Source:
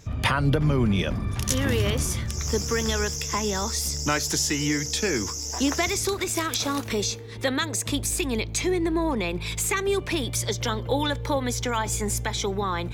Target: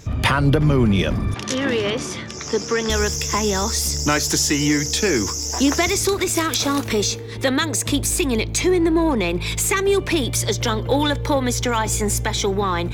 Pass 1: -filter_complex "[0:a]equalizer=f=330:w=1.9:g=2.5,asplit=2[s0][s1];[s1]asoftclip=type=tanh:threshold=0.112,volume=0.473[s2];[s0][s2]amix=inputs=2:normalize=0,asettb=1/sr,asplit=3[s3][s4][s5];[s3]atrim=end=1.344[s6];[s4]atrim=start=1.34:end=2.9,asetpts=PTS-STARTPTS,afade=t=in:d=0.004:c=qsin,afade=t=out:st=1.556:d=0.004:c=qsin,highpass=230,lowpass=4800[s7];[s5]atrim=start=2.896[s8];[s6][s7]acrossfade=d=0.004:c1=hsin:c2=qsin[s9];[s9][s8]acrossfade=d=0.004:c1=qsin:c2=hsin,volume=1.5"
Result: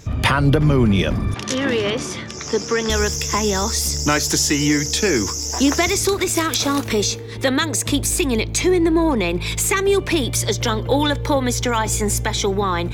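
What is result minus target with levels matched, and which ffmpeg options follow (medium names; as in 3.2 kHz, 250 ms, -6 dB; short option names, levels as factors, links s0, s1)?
saturation: distortion -7 dB
-filter_complex "[0:a]equalizer=f=330:w=1.9:g=2.5,asplit=2[s0][s1];[s1]asoftclip=type=tanh:threshold=0.0447,volume=0.473[s2];[s0][s2]amix=inputs=2:normalize=0,asettb=1/sr,asplit=3[s3][s4][s5];[s3]atrim=end=1.344[s6];[s4]atrim=start=1.34:end=2.9,asetpts=PTS-STARTPTS,afade=t=in:d=0.004:c=qsin,afade=t=out:st=1.556:d=0.004:c=qsin,highpass=230,lowpass=4800[s7];[s5]atrim=start=2.896[s8];[s6][s7]acrossfade=d=0.004:c1=hsin:c2=qsin[s9];[s9][s8]acrossfade=d=0.004:c1=qsin:c2=hsin,volume=1.5"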